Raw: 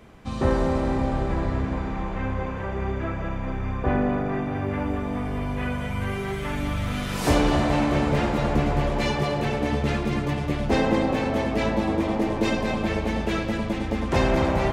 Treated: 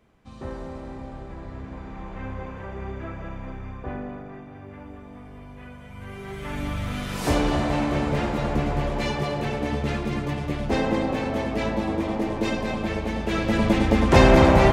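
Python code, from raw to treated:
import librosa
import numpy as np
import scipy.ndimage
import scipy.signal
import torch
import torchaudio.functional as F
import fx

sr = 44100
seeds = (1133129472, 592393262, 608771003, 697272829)

y = fx.gain(x, sr, db=fx.line((1.38, -13.0), (2.25, -6.0), (3.42, -6.0), (4.47, -14.5), (5.84, -14.5), (6.59, -2.0), (13.22, -2.0), (13.66, 7.0)))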